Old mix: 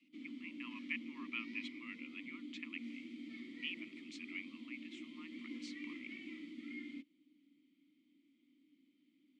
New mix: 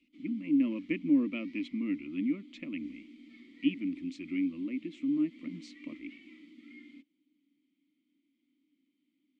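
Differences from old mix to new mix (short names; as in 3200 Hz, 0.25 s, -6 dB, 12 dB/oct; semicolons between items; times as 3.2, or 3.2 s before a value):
speech: remove steep high-pass 900 Hz 96 dB/oct; background -4.5 dB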